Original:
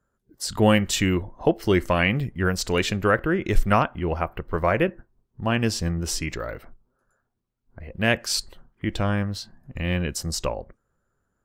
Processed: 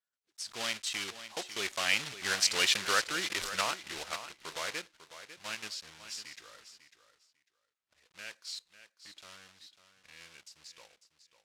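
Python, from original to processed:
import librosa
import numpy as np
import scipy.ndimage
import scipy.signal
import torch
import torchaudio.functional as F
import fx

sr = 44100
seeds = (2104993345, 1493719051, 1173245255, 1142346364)

p1 = fx.block_float(x, sr, bits=3)
p2 = fx.doppler_pass(p1, sr, speed_mps=24, closest_m=14.0, pass_at_s=2.68)
p3 = scipy.signal.sosfilt(scipy.signal.butter(2, 4500.0, 'lowpass', fs=sr, output='sos'), p2)
p4 = fx.low_shelf(p3, sr, hz=61.0, db=5.5)
p5 = fx.level_steps(p4, sr, step_db=17)
p6 = p4 + F.gain(torch.from_numpy(p5), -1.0).numpy()
p7 = np.diff(p6, prepend=0.0)
p8 = p7 + fx.echo_feedback(p7, sr, ms=548, feedback_pct=18, wet_db=-12.5, dry=0)
y = F.gain(torch.from_numpy(p8), 7.0).numpy()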